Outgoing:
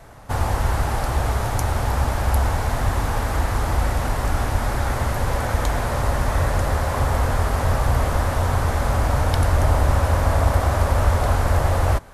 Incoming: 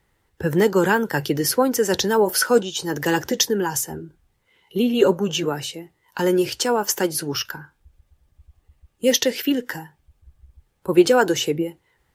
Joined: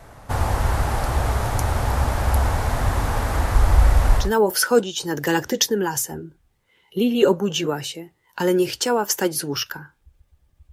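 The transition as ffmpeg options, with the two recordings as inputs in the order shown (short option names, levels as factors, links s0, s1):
-filter_complex "[0:a]asplit=3[s0][s1][s2];[s0]afade=t=out:st=3.54:d=0.02[s3];[s1]asubboost=boost=3.5:cutoff=79,afade=t=in:st=3.54:d=0.02,afade=t=out:st=4.32:d=0.02[s4];[s2]afade=t=in:st=4.32:d=0.02[s5];[s3][s4][s5]amix=inputs=3:normalize=0,apad=whole_dur=10.72,atrim=end=10.72,atrim=end=4.32,asetpts=PTS-STARTPTS[s6];[1:a]atrim=start=1.95:end=8.51,asetpts=PTS-STARTPTS[s7];[s6][s7]acrossfade=d=0.16:c1=tri:c2=tri"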